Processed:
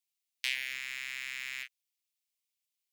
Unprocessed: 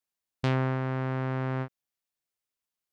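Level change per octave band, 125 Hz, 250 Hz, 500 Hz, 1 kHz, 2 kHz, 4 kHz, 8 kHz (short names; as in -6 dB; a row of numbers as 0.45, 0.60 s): under -40 dB, under -35 dB, under -35 dB, -22.5 dB, +3.5 dB, +8.5 dB, n/a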